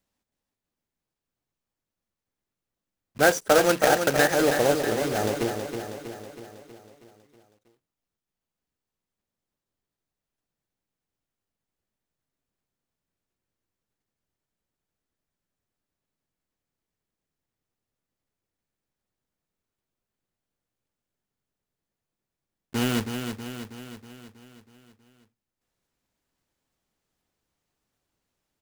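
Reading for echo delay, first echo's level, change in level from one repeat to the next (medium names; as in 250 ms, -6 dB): 321 ms, -7.0 dB, -5.0 dB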